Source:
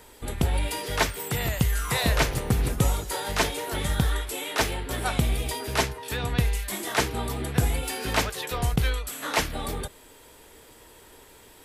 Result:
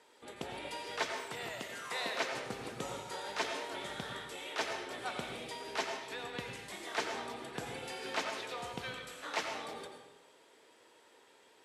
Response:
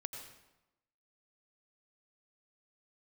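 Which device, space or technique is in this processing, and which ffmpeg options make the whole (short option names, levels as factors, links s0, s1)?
supermarket ceiling speaker: -filter_complex "[0:a]asettb=1/sr,asplit=3[s0][s1][s2];[s0]atrim=end=1.524[s3];[s1]atrim=start=1.52:end=2.34,asetpts=PTS-STARTPTS,afade=t=in:d=0.004:c=qsin,afade=t=out:st=0.816:d=0.004:c=qsin,highpass=230[s4];[s2]atrim=start=2.336[s5];[s3][s4]acrossfade=d=0.004:c1=hsin:c2=qsin[s6];[s6][s5]acrossfade=d=0.004:c1=qsin:c2=hsin,highpass=320,lowpass=6200[s7];[1:a]atrim=start_sample=2205[s8];[s7][s8]afir=irnorm=-1:irlink=0,volume=0.422"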